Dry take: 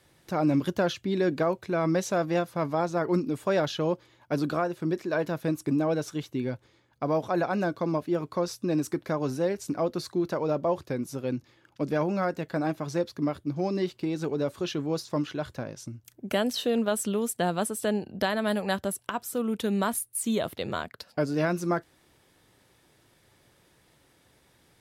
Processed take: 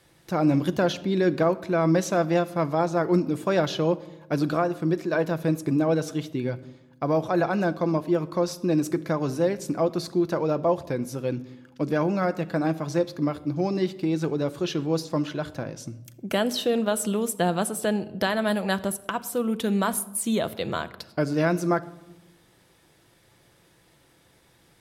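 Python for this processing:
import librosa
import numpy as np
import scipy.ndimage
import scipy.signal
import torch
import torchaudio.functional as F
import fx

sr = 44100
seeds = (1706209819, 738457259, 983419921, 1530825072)

y = fx.room_shoebox(x, sr, seeds[0], volume_m3=3800.0, walls='furnished', distance_m=0.74)
y = y * 10.0 ** (2.5 / 20.0)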